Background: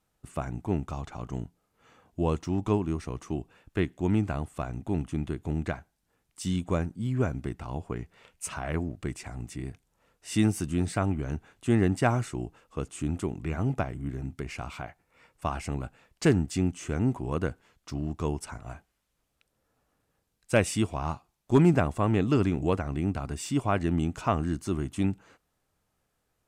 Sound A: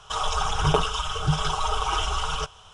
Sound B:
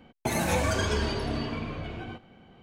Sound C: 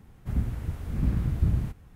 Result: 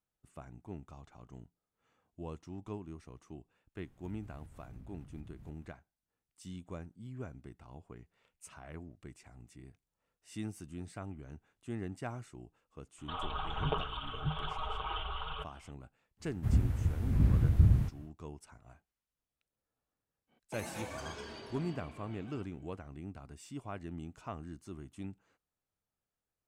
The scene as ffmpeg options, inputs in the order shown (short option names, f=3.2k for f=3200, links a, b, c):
-filter_complex "[3:a]asplit=2[a][b];[0:a]volume=-16.5dB[c];[a]acompressor=threshold=-37dB:ratio=6:attack=3.2:release=140:knee=1:detection=peak[d];[1:a]aresample=8000,aresample=44100[e];[b]equalizer=f=95:w=1.7:g=6[f];[2:a]highpass=f=240:p=1[g];[d]atrim=end=1.95,asetpts=PTS-STARTPTS,volume=-13dB,afade=t=in:d=0.004:c=hsin,afade=t=out:st=1.946:d=0.004:c=hsin,adelay=3780[h];[e]atrim=end=2.73,asetpts=PTS-STARTPTS,volume=-12.5dB,afade=t=in:d=0.004:c=hsin,afade=t=out:st=2.726:d=0.004:c=hsin,adelay=12980[i];[f]atrim=end=1.95,asetpts=PTS-STARTPTS,volume=-3dB,afade=t=in:d=0.1,afade=t=out:st=1.85:d=0.1,adelay=16170[j];[g]atrim=end=2.62,asetpts=PTS-STARTPTS,volume=-15.5dB,afade=t=in:d=0.05,afade=t=out:st=2.57:d=0.05,adelay=20270[k];[c][h][i][j][k]amix=inputs=5:normalize=0"